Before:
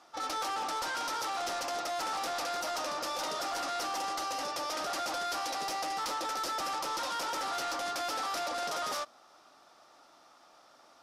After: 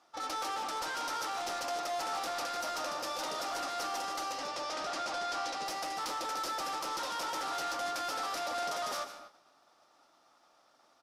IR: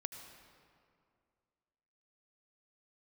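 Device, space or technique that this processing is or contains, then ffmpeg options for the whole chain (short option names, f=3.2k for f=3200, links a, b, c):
keyed gated reverb: -filter_complex "[0:a]asettb=1/sr,asplit=3[a][b][c];[a]atrim=end=4.324[d];[b]atrim=start=4.32:end=5.66,asetpts=PTS-STARTPTS,afade=t=in:d=0.004:c=qsin,afade=t=out:st=1.336:d=0.004:c=qsin,lowpass=7.2k[e];[c]atrim=start=5.656[f];[d][e]acrossfade=d=0.004:c1=hsin:c2=qsin[g];[g][f]acrossfade=d=0.004:c1=qsin:c2=hsin,aecho=1:1:151:0.237,asplit=3[h][i][j];[1:a]atrim=start_sample=2205[k];[i][k]afir=irnorm=-1:irlink=0[l];[j]apad=whole_len=492928[m];[l][m]sidechaingate=range=-33dB:threshold=-56dB:ratio=16:detection=peak,volume=2.5dB[n];[h][n]amix=inputs=2:normalize=0,volume=-8dB"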